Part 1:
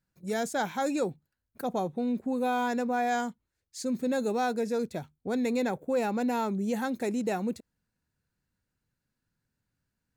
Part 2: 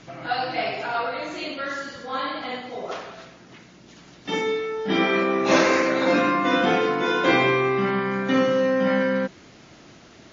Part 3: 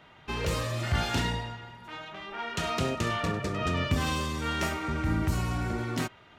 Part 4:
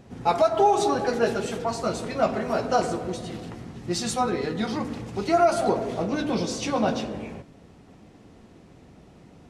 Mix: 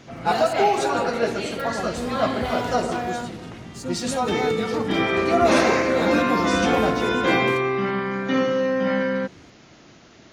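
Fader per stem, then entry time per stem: -1.0, -1.0, -7.5, -0.5 dB; 0.00, 0.00, 1.50, 0.00 s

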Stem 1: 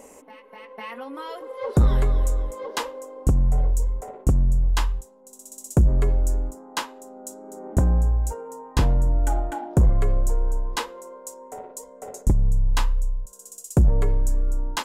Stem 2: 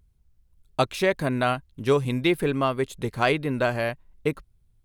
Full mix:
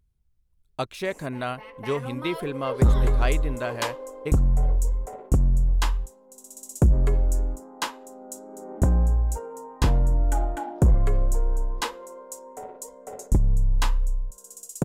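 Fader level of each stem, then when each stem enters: -1.0, -6.5 dB; 1.05, 0.00 s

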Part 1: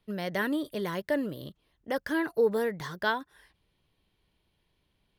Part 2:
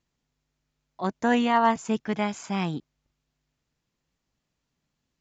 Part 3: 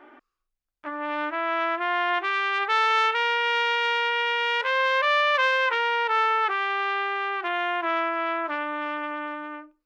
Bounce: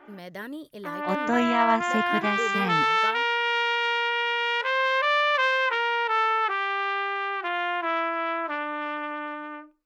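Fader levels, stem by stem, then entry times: -7.5, -1.5, -1.0 dB; 0.00, 0.05, 0.00 s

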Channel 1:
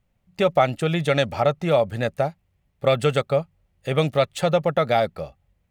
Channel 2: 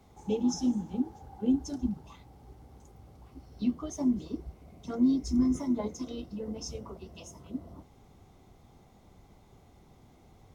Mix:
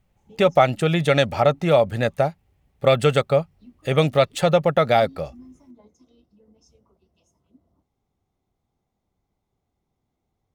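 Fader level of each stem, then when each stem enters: +2.5, -19.5 dB; 0.00, 0.00 s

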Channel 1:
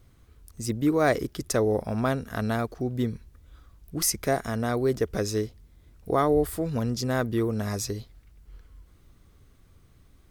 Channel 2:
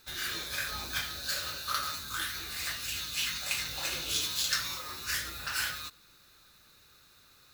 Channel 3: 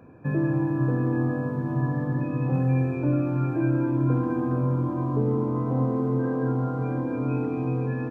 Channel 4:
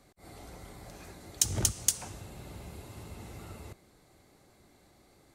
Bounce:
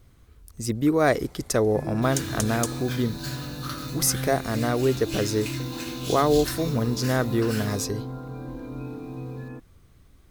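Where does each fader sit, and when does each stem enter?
+2.0, -4.0, -9.0, -4.0 dB; 0.00, 1.95, 1.50, 0.75 s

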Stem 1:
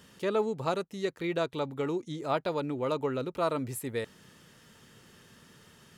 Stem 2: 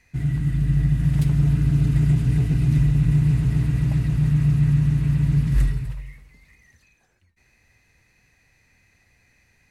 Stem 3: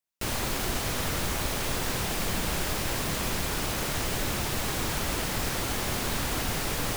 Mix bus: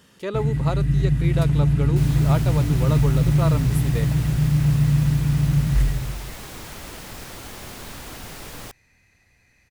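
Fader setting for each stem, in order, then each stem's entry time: +1.5, 0.0, -7.5 dB; 0.00, 0.20, 1.75 s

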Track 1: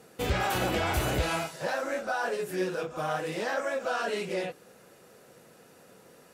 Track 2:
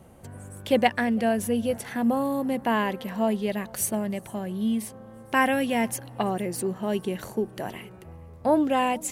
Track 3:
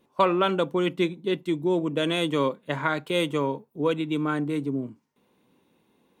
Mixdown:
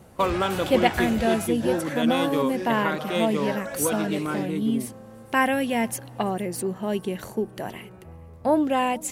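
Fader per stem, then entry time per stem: -4.0, +0.5, -2.5 dB; 0.00, 0.00, 0.00 s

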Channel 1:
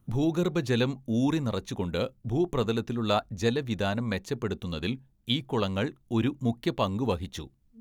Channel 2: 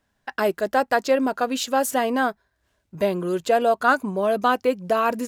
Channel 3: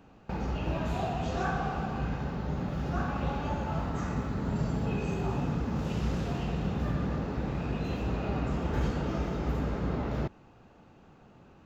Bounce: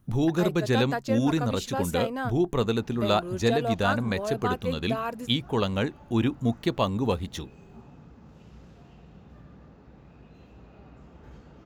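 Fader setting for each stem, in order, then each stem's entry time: +2.0, -10.0, -19.0 dB; 0.00, 0.00, 2.50 s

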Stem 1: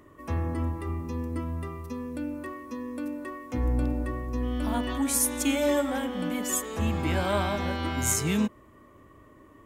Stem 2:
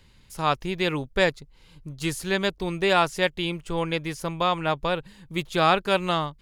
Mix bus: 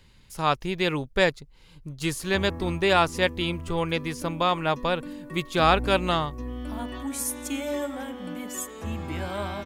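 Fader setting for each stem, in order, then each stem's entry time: -5.0, 0.0 dB; 2.05, 0.00 s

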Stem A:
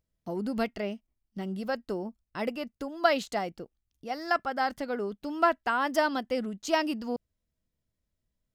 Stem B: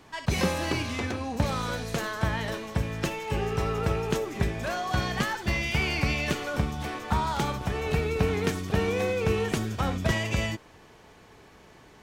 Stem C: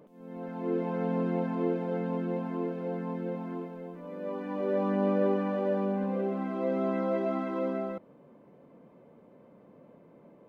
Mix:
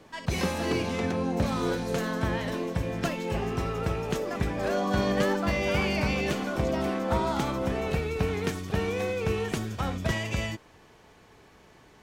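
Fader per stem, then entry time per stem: -12.0, -2.5, -0.5 dB; 0.00, 0.00, 0.00 s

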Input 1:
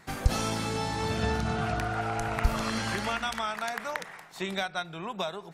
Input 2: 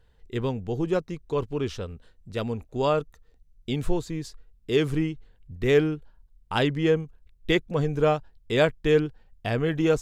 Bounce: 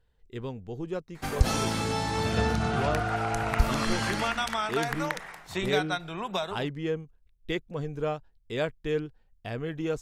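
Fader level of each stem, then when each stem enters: +2.0, -8.5 dB; 1.15, 0.00 s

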